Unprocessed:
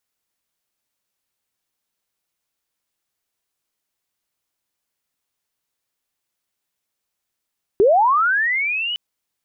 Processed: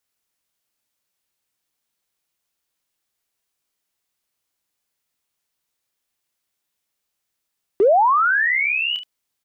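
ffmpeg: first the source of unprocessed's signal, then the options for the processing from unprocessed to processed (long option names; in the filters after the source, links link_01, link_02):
-f lavfi -i "aevalsrc='pow(10,(-9.5-12*t/1.16)/20)*sin(2*PI*(370*t+2630*t*t/(2*1.16)))':duration=1.16:sample_rate=44100"
-filter_complex "[0:a]acrossover=split=290|1600[link_01][link_02][link_03];[link_01]volume=35dB,asoftclip=hard,volume=-35dB[link_04];[link_03]aecho=1:1:29|73:0.596|0.316[link_05];[link_04][link_02][link_05]amix=inputs=3:normalize=0"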